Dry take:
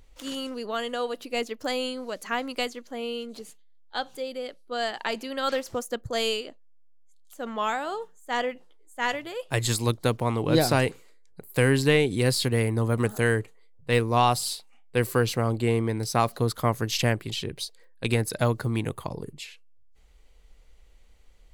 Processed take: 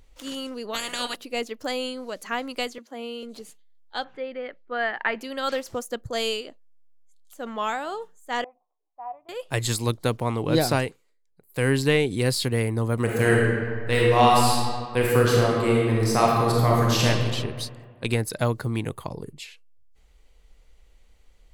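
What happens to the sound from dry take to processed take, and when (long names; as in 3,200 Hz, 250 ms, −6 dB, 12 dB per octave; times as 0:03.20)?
0:00.73–0:01.15: ceiling on every frequency bin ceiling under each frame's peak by 29 dB
0:02.78–0:03.23: Chebyshev high-pass with heavy ripple 220 Hz, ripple 3 dB
0:04.04–0:05.21: low-pass with resonance 1,900 Hz, resonance Q 2.6
0:08.44–0:09.29: formant resonators in series a
0:10.75–0:11.69: duck −14 dB, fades 0.22 s
0:13.03–0:17.06: thrown reverb, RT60 1.9 s, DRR −3.5 dB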